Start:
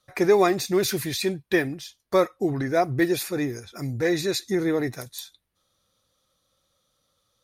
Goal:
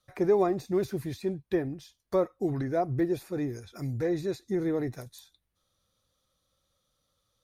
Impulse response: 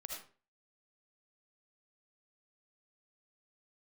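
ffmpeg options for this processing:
-filter_complex "[0:a]acrossover=split=1100[a][b];[a]lowshelf=f=95:g=8.5[c];[b]acompressor=threshold=-43dB:ratio=6[d];[c][d]amix=inputs=2:normalize=0,volume=-5.5dB"

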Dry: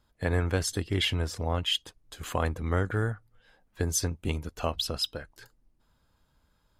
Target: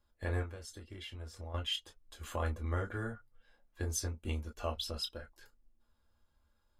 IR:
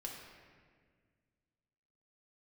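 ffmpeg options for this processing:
-filter_complex "[0:a]asettb=1/sr,asplit=3[a][b][c];[a]atrim=end=0.424[d];[b]atrim=start=0.42:end=1.54,asetpts=PTS-STARTPTS,afade=t=in:d=0.004:c=qsin,afade=t=out:st=1.116:d=0.004:c=qsin,acompressor=threshold=-36dB:ratio=6[e];[c]atrim=start=1.536[f];[d][e]acrossfade=d=0.004:c1=hsin:c2=qsin[g];[g][f]acrossfade=d=0.004:c1=qsin:c2=hsin[h];[1:a]atrim=start_sample=2205,atrim=end_sample=3087,asetrate=79380,aresample=44100[i];[h][i]afir=irnorm=-1:irlink=0"

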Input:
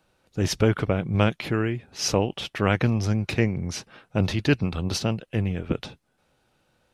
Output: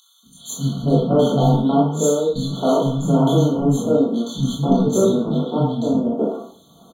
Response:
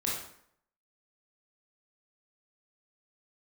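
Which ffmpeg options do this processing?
-filter_complex "[0:a]highpass=100,lowshelf=f=150:g=-4.5,aeval=exprs='0.211*(abs(mod(val(0)/0.211+3,4)-2)-1)':c=same,lowshelf=f=460:g=9.5,acompressor=mode=upward:threshold=-31dB:ratio=2.5,asetrate=58866,aresample=44100,atempo=0.749154,aecho=1:1:4.4:0.48,acrossover=split=220|2000[a][b][c];[a]adelay=230[d];[b]adelay=500[e];[d][e][c]amix=inputs=3:normalize=0[f];[1:a]atrim=start_sample=2205,asetrate=57330,aresample=44100[g];[f][g]afir=irnorm=-1:irlink=0,afftfilt=real='re*eq(mod(floor(b*sr/1024/1500),2),0)':imag='im*eq(mod(floor(b*sr/1024/1500),2),0)':win_size=1024:overlap=0.75"

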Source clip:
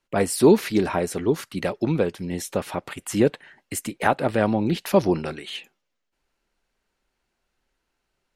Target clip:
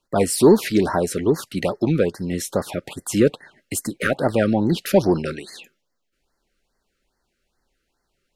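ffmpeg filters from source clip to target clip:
-filter_complex "[0:a]asplit=2[a][b];[b]asoftclip=type=tanh:threshold=-16dB,volume=-4.5dB[c];[a][c]amix=inputs=2:normalize=0,afftfilt=real='re*(1-between(b*sr/1024,810*pow(3000/810,0.5+0.5*sin(2*PI*2.4*pts/sr))/1.41,810*pow(3000/810,0.5+0.5*sin(2*PI*2.4*pts/sr))*1.41))':imag='im*(1-between(b*sr/1024,810*pow(3000/810,0.5+0.5*sin(2*PI*2.4*pts/sr))/1.41,810*pow(3000/810,0.5+0.5*sin(2*PI*2.4*pts/sr))*1.41))':win_size=1024:overlap=0.75"

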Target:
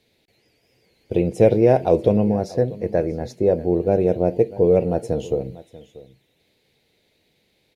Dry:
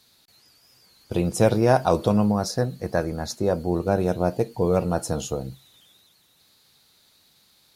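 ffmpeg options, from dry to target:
-filter_complex "[0:a]firequalizer=gain_entry='entry(220,0);entry(440,7);entry(1200,-16);entry(2100,2);entry(4300,-12);entry(12000,-15)':delay=0.05:min_phase=1,asplit=2[a][b];[b]aecho=0:1:638:0.112[c];[a][c]amix=inputs=2:normalize=0,volume=1dB"

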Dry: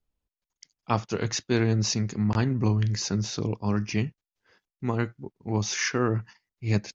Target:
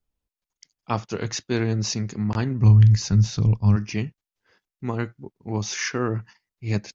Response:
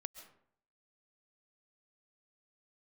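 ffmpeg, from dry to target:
-filter_complex "[0:a]asplit=3[a][b][c];[a]afade=t=out:st=2.61:d=0.02[d];[b]asubboost=boost=10.5:cutoff=120,afade=t=in:st=2.61:d=0.02,afade=t=out:st=3.75:d=0.02[e];[c]afade=t=in:st=3.75:d=0.02[f];[d][e][f]amix=inputs=3:normalize=0"

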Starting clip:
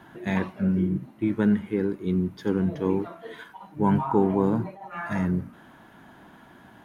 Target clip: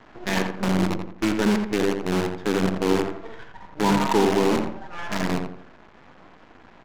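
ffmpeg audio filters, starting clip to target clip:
-filter_complex "[0:a]highpass=210,highshelf=f=3.7k:g=6,aresample=16000,acrusher=bits=5:dc=4:mix=0:aa=0.000001,aresample=44100,adynamicsmooth=sensitivity=5.5:basefreq=1.8k,asplit=2[a][b];[b]asoftclip=type=tanh:threshold=-24.5dB,volume=-3.5dB[c];[a][c]amix=inputs=2:normalize=0,asplit=2[d][e];[e]adelay=85,lowpass=f=2.2k:p=1,volume=-5dB,asplit=2[f][g];[g]adelay=85,lowpass=f=2.2k:p=1,volume=0.37,asplit=2[h][i];[i]adelay=85,lowpass=f=2.2k:p=1,volume=0.37,asplit=2[j][k];[k]adelay=85,lowpass=f=2.2k:p=1,volume=0.37,asplit=2[l][m];[m]adelay=85,lowpass=f=2.2k:p=1,volume=0.37[n];[d][f][h][j][l][n]amix=inputs=6:normalize=0"

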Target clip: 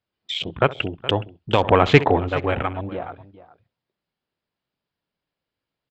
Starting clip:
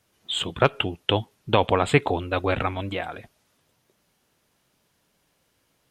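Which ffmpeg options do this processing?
-filter_complex "[0:a]aresample=11025,aresample=44100,asplit=2[a][b];[b]aecho=0:1:66|132|198:0.119|0.0464|0.0181[c];[a][c]amix=inputs=2:normalize=0,asettb=1/sr,asplit=3[d][e][f];[d]atrim=end=1.644[g];[e]atrim=start=1.64:end=2.29,asetpts=PTS-STARTPTS,afade=t=in:d=0.004:c=qsin,afade=t=out:st=0.646:d=0.004:c=qsin,acontrast=54[h];[f]atrim=start=2.286[i];[g][h]acrossfade=d=0.004:c1=hsin:c2=qsin[j];[j][i]acrossfade=d=0.004:c1=qsin:c2=hsin,afwtdn=0.0282,asplit=2[k][l];[l]aecho=0:1:419:0.133[m];[k][m]amix=inputs=2:normalize=0,volume=1dB"

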